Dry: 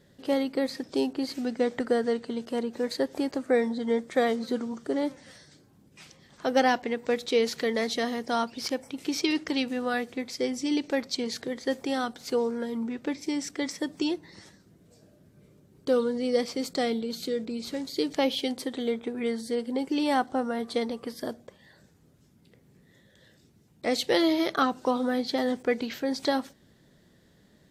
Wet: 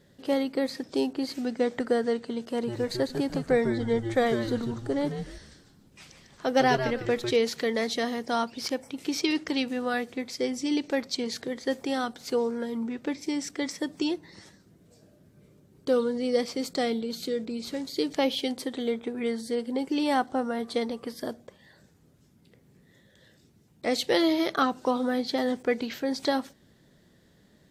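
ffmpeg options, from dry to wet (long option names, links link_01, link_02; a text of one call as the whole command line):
ffmpeg -i in.wav -filter_complex "[0:a]asettb=1/sr,asplit=3[link_01][link_02][link_03];[link_01]atrim=end=2.474[link_04];[link_02]atrim=start=2.47:end=7.36,asetpts=PTS-STARTPTS,afade=type=in:duration=0.004:curve=qsin,afade=type=out:start_time=4.886:duration=0.004:curve=qsin,asplit=5[link_05][link_06][link_07][link_08][link_09];[link_06]adelay=150,afreqshift=-120,volume=-7dB[link_10];[link_07]adelay=300,afreqshift=-240,volume=-17.5dB[link_11];[link_08]adelay=450,afreqshift=-360,volume=-27.9dB[link_12];[link_09]adelay=600,afreqshift=-480,volume=-38.4dB[link_13];[link_05][link_10][link_11][link_12][link_13]amix=inputs=5:normalize=0,atrim=end_sample=215649[link_14];[link_03]atrim=start=7.356[link_15];[link_04][link_14]acrossfade=duration=0.004:curve1=hsin:curve2=qsin[link_16];[link_16][link_15]acrossfade=duration=0.004:curve1=qsin:curve2=hsin" out.wav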